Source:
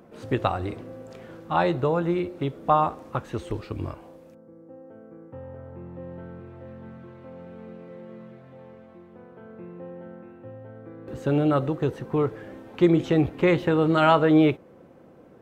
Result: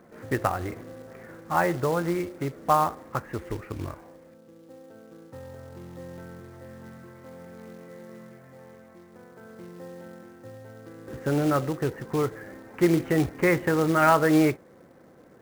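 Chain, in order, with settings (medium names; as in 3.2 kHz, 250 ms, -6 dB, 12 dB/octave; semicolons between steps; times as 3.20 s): resonant high shelf 2.7 kHz -11.5 dB, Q 3; short-mantissa float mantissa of 2-bit; trim -2.5 dB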